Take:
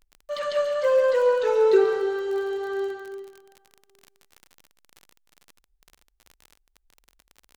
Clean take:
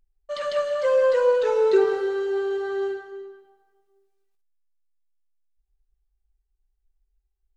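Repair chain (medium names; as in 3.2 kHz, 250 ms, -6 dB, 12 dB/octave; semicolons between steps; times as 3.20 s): de-click; inverse comb 139 ms -11 dB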